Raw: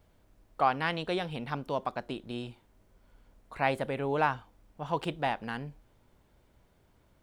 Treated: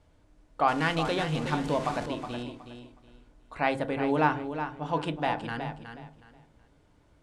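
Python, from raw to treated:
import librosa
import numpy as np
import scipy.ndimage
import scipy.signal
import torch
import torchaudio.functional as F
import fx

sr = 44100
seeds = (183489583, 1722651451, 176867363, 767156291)

y = fx.zero_step(x, sr, step_db=-35.0, at=(0.68, 2.06))
y = scipy.signal.sosfilt(scipy.signal.butter(4, 9600.0, 'lowpass', fs=sr, output='sos'), y)
y = fx.echo_feedback(y, sr, ms=368, feedback_pct=24, wet_db=-9.0)
y = fx.rev_fdn(y, sr, rt60_s=0.36, lf_ratio=1.55, hf_ratio=0.35, size_ms=20.0, drr_db=8.0)
y = F.gain(torch.from_numpy(y), 1.0).numpy()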